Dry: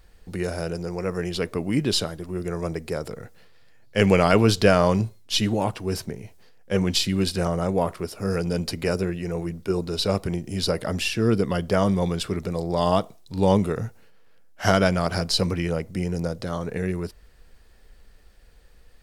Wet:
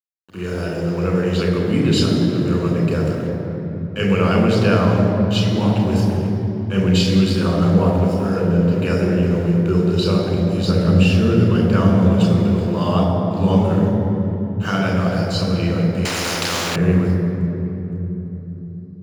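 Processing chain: 8.34–8.78 LPF 1700 Hz 12 dB/oct; 10.67–11.09 low shelf 270 Hz +12 dB; AGC gain up to 8.5 dB; sample gate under -31 dBFS; reverb RT60 3.5 s, pre-delay 3 ms, DRR -0.5 dB; 16.05–16.76 spectral compressor 4:1; gain -11.5 dB

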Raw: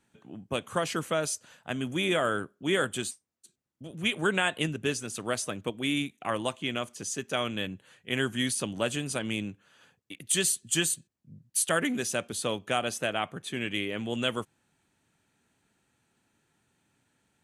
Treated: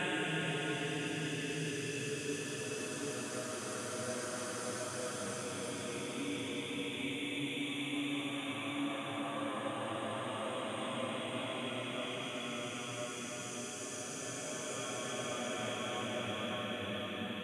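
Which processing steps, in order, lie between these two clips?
Paulstretch 5.6×, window 1.00 s, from 4.55; de-hum 72.27 Hz, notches 2; gain -7 dB

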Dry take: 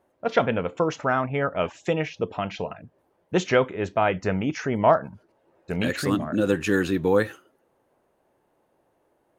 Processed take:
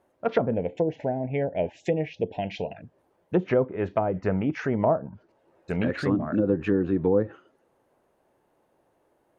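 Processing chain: treble ducked by the level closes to 570 Hz, closed at -18 dBFS; 0.54–2.77 Chebyshev band-stop 750–2000 Hz, order 2

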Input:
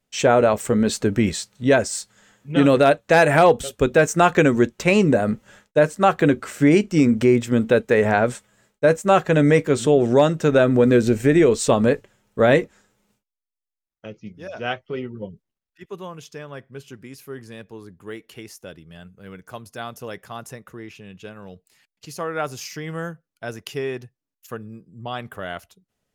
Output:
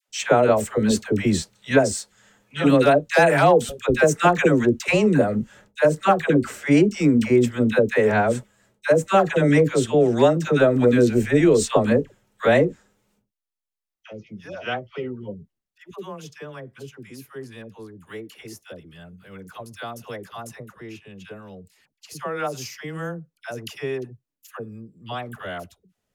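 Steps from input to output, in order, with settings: dispersion lows, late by 88 ms, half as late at 730 Hz; gain -1 dB

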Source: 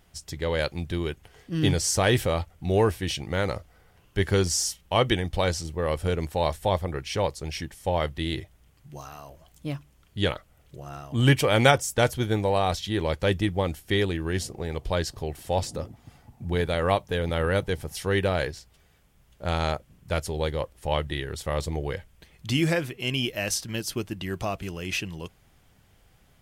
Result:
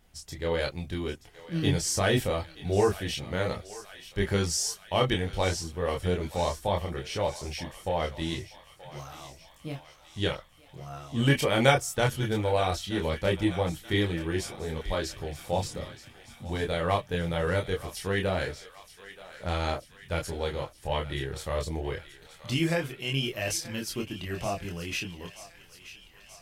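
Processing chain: chorus voices 6, 0.15 Hz, delay 26 ms, depth 4.5 ms; thinning echo 0.928 s, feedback 69%, high-pass 910 Hz, level -14 dB

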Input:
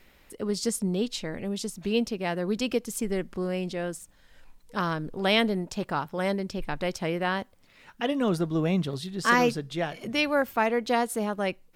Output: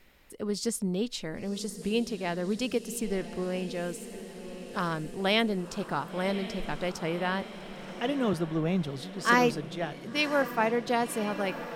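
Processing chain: diffused feedback echo 1.087 s, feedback 64%, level -12 dB; 8.33–10.88 three-band expander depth 40%; gain -2.5 dB

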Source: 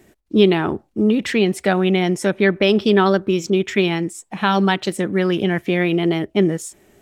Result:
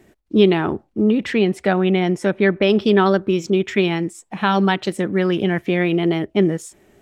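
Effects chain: high shelf 5000 Hz -6.5 dB, from 0.84 s -12 dB, from 2.7 s -6.5 dB

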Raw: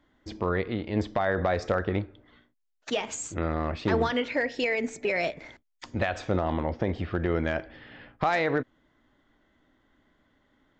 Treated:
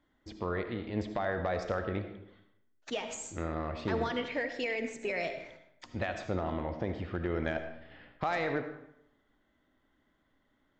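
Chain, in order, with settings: 7.42–7.91 transient shaper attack +12 dB, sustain -9 dB; digital reverb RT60 0.8 s, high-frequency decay 0.7×, pre-delay 35 ms, DRR 7.5 dB; gain -7 dB

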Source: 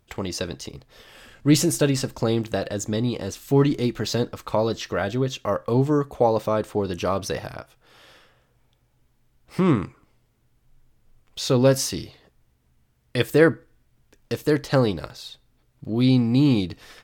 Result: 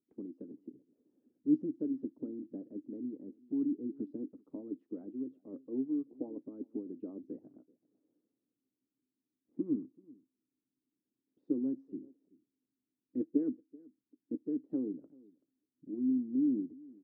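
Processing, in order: Butterworth band-pass 280 Hz, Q 4.3; echo 0.382 s -23 dB; harmonic-percussive split harmonic -14 dB; gain +4.5 dB

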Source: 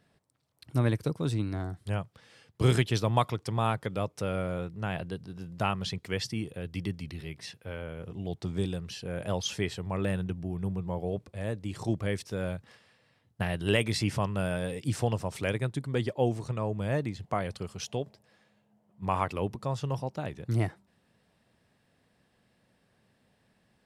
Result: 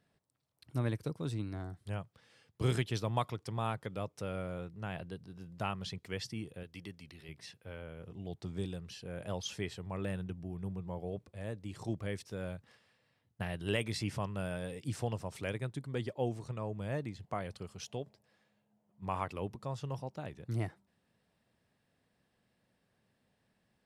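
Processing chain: 6.63–7.29 low shelf 280 Hz -10 dB; gain -7.5 dB

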